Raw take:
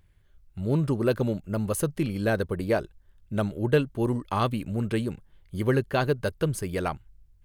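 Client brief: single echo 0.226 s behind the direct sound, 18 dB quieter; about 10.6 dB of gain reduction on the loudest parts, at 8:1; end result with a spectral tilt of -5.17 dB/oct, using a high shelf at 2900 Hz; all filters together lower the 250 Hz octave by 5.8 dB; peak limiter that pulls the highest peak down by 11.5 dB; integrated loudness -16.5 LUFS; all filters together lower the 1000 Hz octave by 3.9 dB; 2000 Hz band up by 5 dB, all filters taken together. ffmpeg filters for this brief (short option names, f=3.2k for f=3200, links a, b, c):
-af "equalizer=f=250:t=o:g=-8,equalizer=f=1k:t=o:g=-8.5,equalizer=f=2k:t=o:g=7.5,highshelf=f=2.9k:g=8.5,acompressor=threshold=-29dB:ratio=8,alimiter=level_in=4.5dB:limit=-24dB:level=0:latency=1,volume=-4.5dB,aecho=1:1:226:0.126,volume=23dB"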